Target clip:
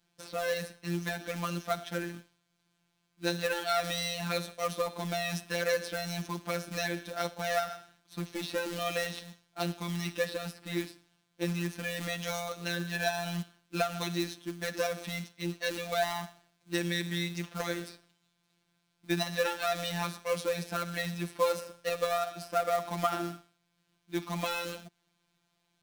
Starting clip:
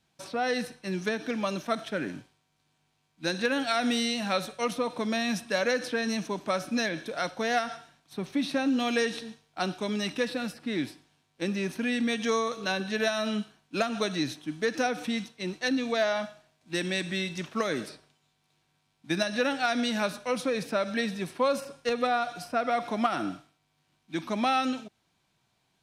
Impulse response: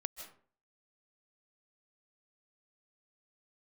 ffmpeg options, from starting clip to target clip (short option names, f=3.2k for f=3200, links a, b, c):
-af "acrusher=bits=3:mode=log:mix=0:aa=0.000001,afftfilt=real='hypot(re,im)*cos(PI*b)':imag='0':win_size=1024:overlap=0.75"